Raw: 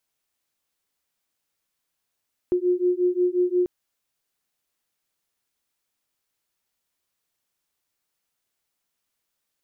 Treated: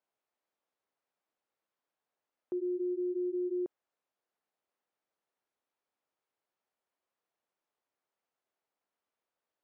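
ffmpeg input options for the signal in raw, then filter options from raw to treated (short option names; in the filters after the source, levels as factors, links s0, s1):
-f lavfi -i "aevalsrc='0.0794*(sin(2*PI*356*t)+sin(2*PI*361.6*t))':d=1.14:s=44100"
-af "alimiter=level_in=1.33:limit=0.0631:level=0:latency=1:release=65,volume=0.75,bandpass=f=630:t=q:w=0.82:csg=0"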